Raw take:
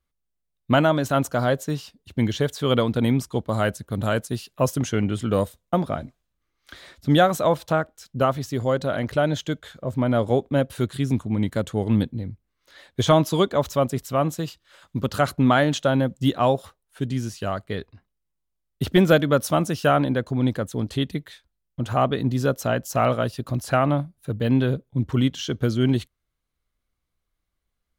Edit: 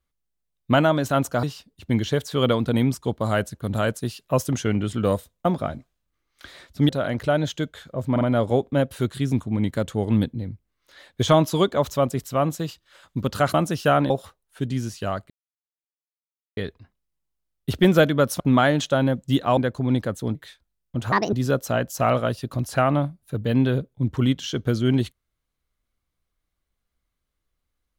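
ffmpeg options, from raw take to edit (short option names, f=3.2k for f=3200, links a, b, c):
-filter_complex "[0:a]asplit=13[a][b][c][d][e][f][g][h][i][j][k][l][m];[a]atrim=end=1.432[n];[b]atrim=start=1.708:end=7.172[o];[c]atrim=start=8.778:end=10.052[p];[d]atrim=start=9.998:end=10.052[q];[e]atrim=start=9.998:end=15.332[r];[f]atrim=start=19.528:end=20.092[s];[g]atrim=start=16.498:end=17.7,asetpts=PTS-STARTPTS,afade=t=out:st=1.198:d=0.004:c=hsin,apad=pad_dur=1.27[t];[h]atrim=start=17.7:end=19.532,asetpts=PTS-STARTPTS,afade=t=in:d=0.004:c=hsin[u];[i]atrim=start=15.328:end=16.502[v];[j]atrim=start=20.088:end=20.872[w];[k]atrim=start=21.188:end=21.964[x];[l]atrim=start=21.96:end=22.28,asetpts=PTS-STARTPTS,asetrate=68355,aresample=44100[y];[m]atrim=start=22.276[z];[n][o]acrossfade=d=0.004:c1=hsin:c2=hsin[aa];[aa][p]acrossfade=d=0.004:c1=hsin:c2=hsin[ab];[ab][q]acrossfade=d=0.004:c1=hsin:c2=hsin[ac];[ac][r]acrossfade=d=0.004:c1=hsin:c2=hsin[ad];[ad][s]acrossfade=d=0.004:c1=hsin:c2=hsin[ae];[t][u]concat=n=2:v=0:a=1[af];[ae][af]acrossfade=d=0.004:c1=hsin:c2=hsin[ag];[ag][v]acrossfade=d=0.004:c1=hsin:c2=hsin[ah];[ah][w]acrossfade=d=0.004:c1=hsin:c2=hsin[ai];[ai][x]acrossfade=d=0.004:c1=hsin:c2=hsin[aj];[aj][y]acrossfade=d=0.004:c1=hsin:c2=hsin[ak];[ak][z]acrossfade=d=0.004:c1=hsin:c2=hsin"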